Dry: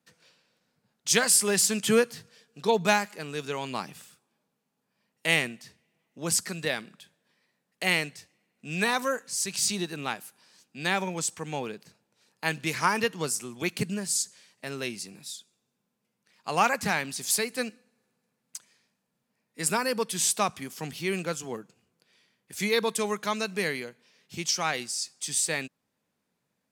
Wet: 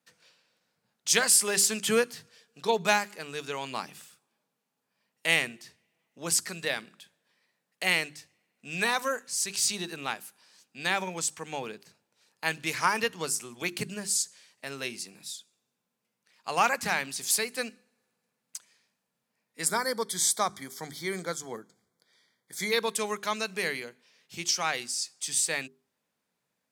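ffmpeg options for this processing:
-filter_complex "[0:a]asettb=1/sr,asplit=3[a][b][c];[a]atrim=end=19.654[d];[b]atrim=start=19.65:end=22.72,asetpts=PTS-STARTPTS,afade=t=in:d=0.004:c=qsin,afade=t=out:st=3.066:d=0.004:c=qsin,asuperstop=centerf=2700:order=8:qfactor=3.2[e];[c]atrim=start=22.716[f];[d][e]acrossfade=d=0.004:c1=hsin:c2=qsin[g];[g][f]acrossfade=d=0.004:c1=qsin:c2=hsin,lowshelf=f=400:g=-6.5,bandreject=f=50:t=h:w=6,bandreject=f=100:t=h:w=6,bandreject=f=150:t=h:w=6,bandreject=f=200:t=h:w=6,bandreject=f=250:t=h:w=6,bandreject=f=300:t=h:w=6,bandreject=f=350:t=h:w=6,bandreject=f=400:t=h:w=6"

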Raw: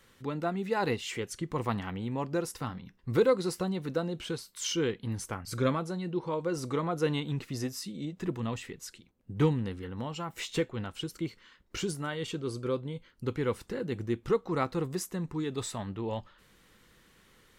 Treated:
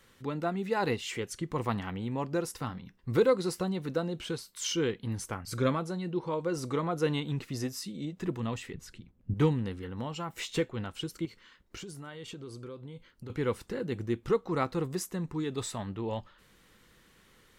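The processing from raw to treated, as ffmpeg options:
-filter_complex "[0:a]asettb=1/sr,asplit=3[a][b][c];[a]atrim=end=8.744[d];[b]atrim=start=8.74:end=9.34,asetpts=PTS-STARTPTS,afade=t=in:d=0.004:c=qsin,afade=t=out:st=0.596:d=0.004:c=qsin,bass=f=250:g=12,treble=f=4k:g=-8[e];[c]atrim=start=9.336[f];[d][e]acrossfade=d=0.004:c1=hsin:c2=qsin[g];[g][f]acrossfade=d=0.004:c1=qsin:c2=hsin,asettb=1/sr,asplit=3[h][i][j];[h]atrim=end=11.254[k];[i]atrim=start=11.25:end=13.3,asetpts=PTS-STARTPTS,afade=t=in:d=0.004:c=qsin,afade=t=out:st=2.046:d=0.004:c=qsin,acompressor=threshold=-40dB:ratio=6:attack=3.2:release=140:knee=1:detection=peak[l];[j]atrim=start=13.296[m];[k][l]acrossfade=d=0.004:c1=hsin:c2=qsin[n];[n][m]acrossfade=d=0.004:c1=qsin:c2=hsin"

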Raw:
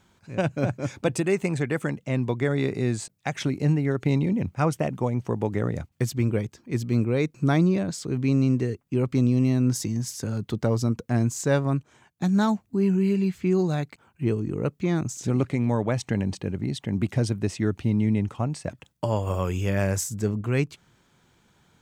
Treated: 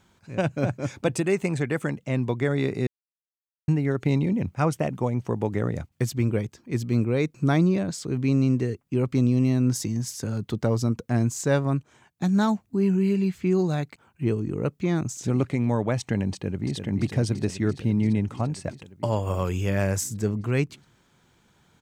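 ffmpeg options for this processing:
-filter_complex "[0:a]asplit=2[a][b];[b]afade=t=in:st=16.31:d=0.01,afade=t=out:st=16.76:d=0.01,aecho=0:1:340|680|1020|1360|1700|2040|2380|2720|3060|3400|3740|4080:0.446684|0.357347|0.285877|0.228702|0.182962|0.146369|0.117095|0.0936763|0.0749411|0.0599529|0.0479623|0.0383698[c];[a][c]amix=inputs=2:normalize=0,asplit=3[d][e][f];[d]atrim=end=2.87,asetpts=PTS-STARTPTS,afade=t=out:st=2.866:d=0.004:c=hsin[g];[e]atrim=start=2.87:end=3.68,asetpts=PTS-STARTPTS,volume=0[h];[f]atrim=start=3.68,asetpts=PTS-STARTPTS,afade=t=in:d=0.004:c=hsin[i];[g][h][i]concat=n=3:v=0:a=1"

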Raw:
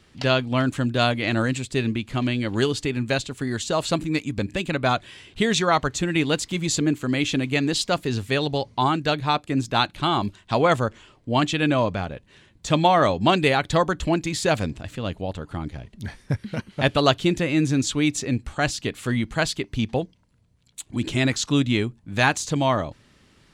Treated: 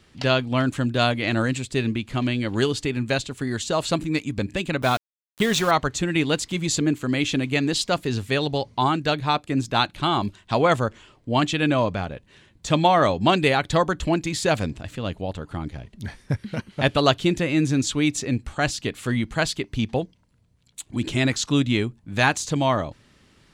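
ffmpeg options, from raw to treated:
-filter_complex "[0:a]asettb=1/sr,asplit=3[a][b][c];[a]atrim=end=4.824[d];[b]atrim=start=4.82:end=5.71,asetpts=PTS-STARTPTS,afade=t=in:d=0.004:c=qsin,afade=t=out:st=0.886:d=0.004:c=qsin,aeval=exprs='val(0)*gte(abs(val(0)),0.0376)':c=same[e];[c]atrim=start=5.706[f];[d][e]acrossfade=d=0.004:c1=hsin:c2=qsin[g];[g][f]acrossfade=d=0.004:c1=qsin:c2=hsin"

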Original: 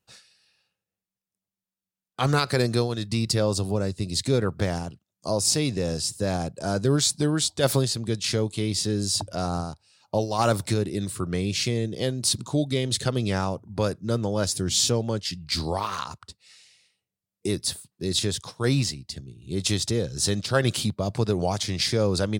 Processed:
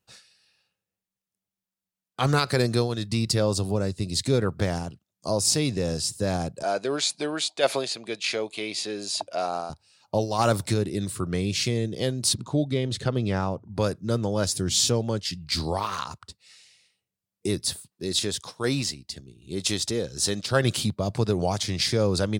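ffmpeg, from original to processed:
-filter_complex "[0:a]asettb=1/sr,asplit=3[a][b][c];[a]atrim=end=6.634[d];[b]atrim=start=6.63:end=9.7,asetpts=PTS-STARTPTS,afade=t=in:d=0.004:c=qsin,afade=t=out:st=3.066:d=0.004:c=qsin,highpass=420,equalizer=f=670:t=q:w=4:g=6,equalizer=f=2.4k:t=q:w=4:g=9,equalizer=f=5.6k:t=q:w=4:g=-6,equalizer=f=8.1k:t=q:w=4:g=-8,lowpass=f=9.4k:w=0.5412,lowpass=f=9.4k:w=1.3066[e];[c]atrim=start=9.696[f];[d][e]acrossfade=d=0.004:c1=hsin:c2=qsin[g];[g][f]acrossfade=d=0.004:c1=qsin:c2=hsin,asettb=1/sr,asplit=3[h][i][j];[h]atrim=end=12.344[k];[i]atrim=start=12.34:end=13.75,asetpts=PTS-STARTPTS,afade=t=in:d=0.004:c=qsin,afade=t=out:st=1.406:d=0.004:c=qsin,lowpass=f=2.3k:p=1[l];[j]atrim=start=13.746[m];[k][l]acrossfade=d=0.004:c1=hsin:c2=qsin[n];[n][m]acrossfade=d=0.004:c1=qsin:c2=hsin,asettb=1/sr,asplit=3[o][p][q];[o]atrim=end=17.884[r];[p]atrim=start=17.88:end=20.52,asetpts=PTS-STARTPTS,afade=t=in:d=0.004:c=qsin,afade=t=out:st=2.636:d=0.004:c=qsin,equalizer=f=110:w=0.9:g=-8[s];[q]atrim=start=20.516[t];[r][s]acrossfade=d=0.004:c1=hsin:c2=qsin[u];[u][t]acrossfade=d=0.004:c1=qsin:c2=hsin"

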